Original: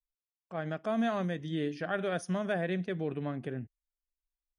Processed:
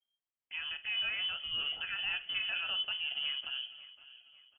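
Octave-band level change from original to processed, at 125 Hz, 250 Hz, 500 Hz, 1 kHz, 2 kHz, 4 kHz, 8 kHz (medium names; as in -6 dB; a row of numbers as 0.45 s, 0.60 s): under -25 dB, under -30 dB, -26.5 dB, -11.5 dB, +4.0 dB, +17.5 dB, under -25 dB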